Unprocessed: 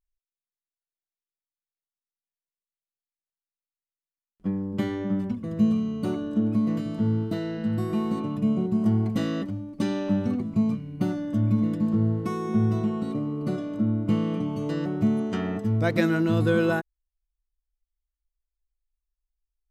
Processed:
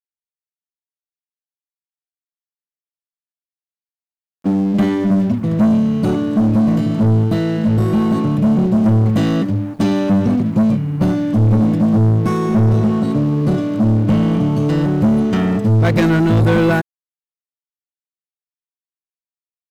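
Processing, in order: high-pass sweep 3100 Hz -> 120 Hz, 1.75–5.31; sample leveller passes 3; bit-crush 10-bit

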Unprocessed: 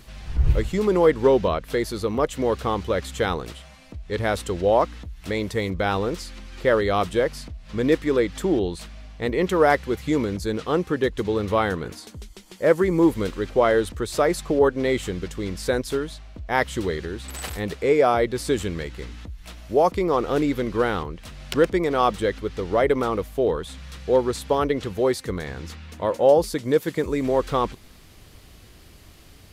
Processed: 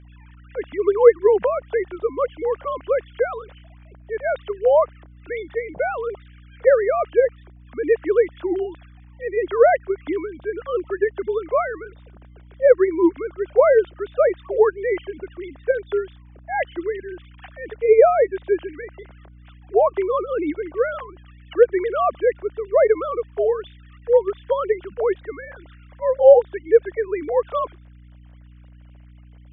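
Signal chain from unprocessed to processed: sine-wave speech; hum 60 Hz, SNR 22 dB; fifteen-band EQ 250 Hz -6 dB, 630 Hz +6 dB, 1600 Hz +4 dB

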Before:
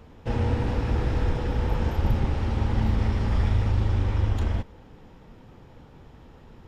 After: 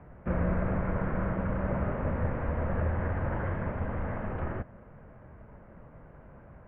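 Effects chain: HPF 110 Hz 24 dB/oct; mistuned SSB -300 Hz 180–2200 Hz; gain +3 dB

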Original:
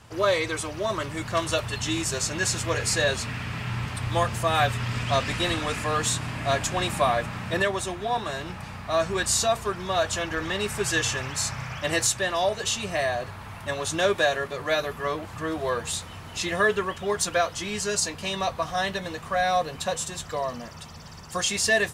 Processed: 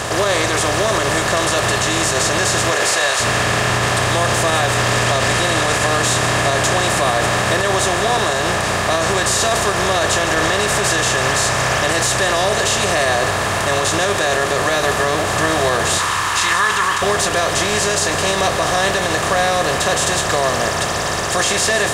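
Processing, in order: per-bin compression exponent 0.4; 2.71–3.19 HPF 250 Hz -> 850 Hz 12 dB/oct; 15.98–17.02 resonant low shelf 800 Hz -7.5 dB, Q 3; limiter -11 dBFS, peak gain reduction 9 dB; split-band echo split 330 Hz, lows 0.241 s, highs 0.154 s, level -13.5 dB; gain +4 dB

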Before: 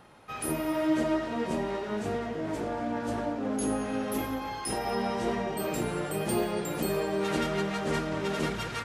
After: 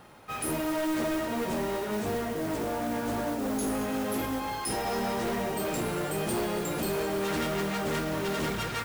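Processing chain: hard clip -29.5 dBFS, distortion -10 dB; modulation noise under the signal 16 dB; gain +2.5 dB

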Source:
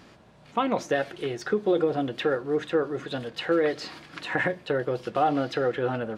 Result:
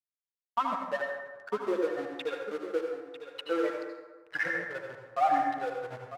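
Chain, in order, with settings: per-bin expansion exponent 3; in parallel at -6 dB: requantised 6-bit, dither triangular; on the sum: backlash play -25 dBFS; band-pass 1400 Hz, Q 0.67; echo 0.948 s -11.5 dB; on a send at -1.5 dB: reverb RT60 1.3 s, pre-delay 73 ms

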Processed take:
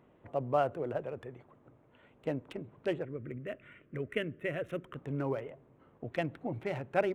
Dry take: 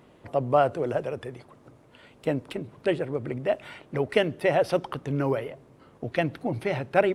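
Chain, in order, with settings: Wiener smoothing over 9 samples; 3.05–4.96 fixed phaser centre 2000 Hz, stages 4; gain -8 dB

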